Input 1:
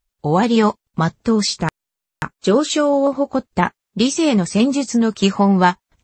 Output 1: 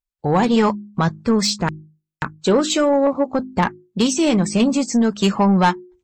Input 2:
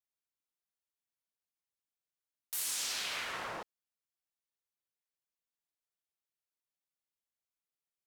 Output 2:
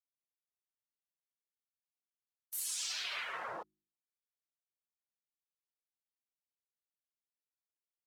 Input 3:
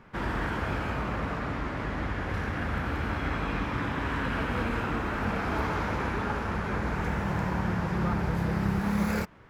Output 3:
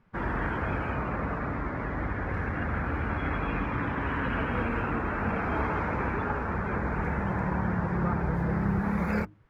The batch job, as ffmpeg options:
-af "bandreject=f=51.63:t=h:w=4,bandreject=f=103.26:t=h:w=4,bandreject=f=154.89:t=h:w=4,bandreject=f=206.52:t=h:w=4,bandreject=f=258.15:t=h:w=4,bandreject=f=309.78:t=h:w=4,bandreject=f=361.41:t=h:w=4,afftdn=nr=15:nf=-40,asoftclip=type=tanh:threshold=-9dB,volume=1dB"

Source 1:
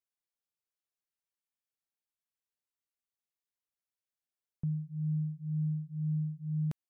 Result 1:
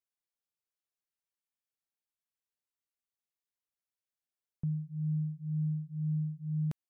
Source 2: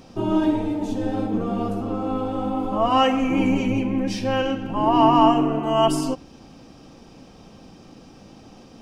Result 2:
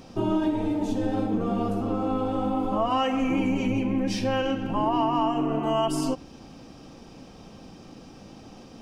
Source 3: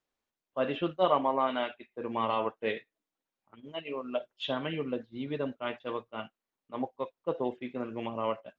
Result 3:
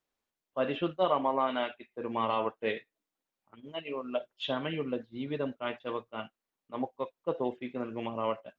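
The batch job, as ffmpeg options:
-af "acompressor=threshold=-21dB:ratio=6"

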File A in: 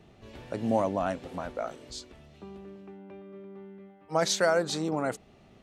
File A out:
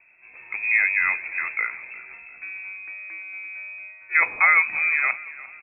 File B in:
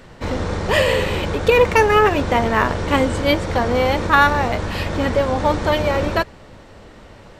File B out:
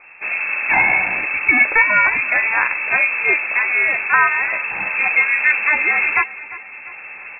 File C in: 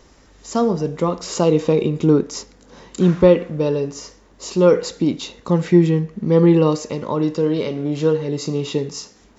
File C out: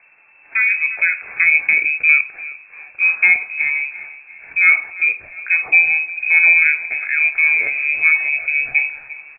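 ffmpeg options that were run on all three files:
-filter_complex "[0:a]lowpass=f=2.3k:t=q:w=0.5098,lowpass=f=2.3k:t=q:w=0.6013,lowpass=f=2.3k:t=q:w=0.9,lowpass=f=2.3k:t=q:w=2.563,afreqshift=-2700,asplit=2[a][b];[b]adelay=16,volume=-13dB[c];[a][c]amix=inputs=2:normalize=0,aecho=1:1:349|698|1047|1396:0.126|0.0541|0.0233|0.01,dynaudnorm=f=110:g=11:m=8.5dB,volume=-1dB"

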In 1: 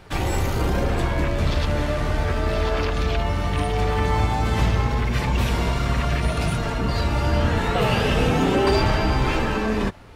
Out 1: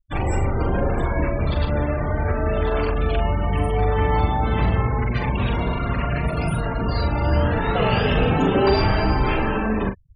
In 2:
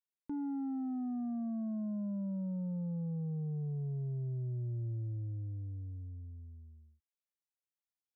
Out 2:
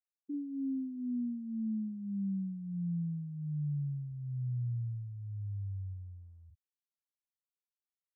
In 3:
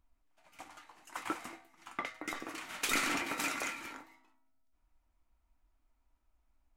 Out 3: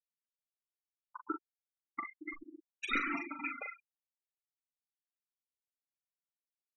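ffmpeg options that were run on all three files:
-filter_complex "[0:a]afftfilt=real='re*gte(hypot(re,im),0.0501)':imag='im*gte(hypot(re,im),0.0501)':win_size=1024:overlap=0.75,asplit=2[a][b];[b]adelay=41,volume=-7dB[c];[a][c]amix=inputs=2:normalize=0"

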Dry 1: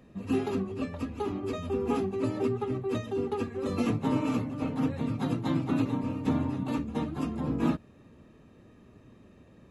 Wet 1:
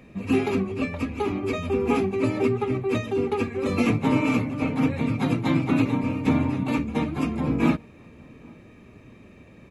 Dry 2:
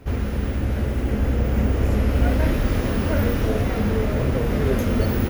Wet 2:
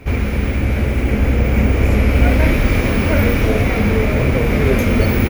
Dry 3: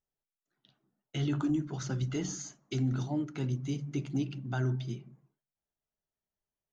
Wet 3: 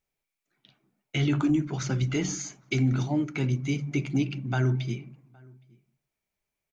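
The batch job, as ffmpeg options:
-filter_complex "[0:a]equalizer=f=2.3k:t=o:w=0.27:g=13,asplit=2[a][b];[b]adelay=816.3,volume=-27dB,highshelf=f=4k:g=-18.4[c];[a][c]amix=inputs=2:normalize=0,volume=6dB"

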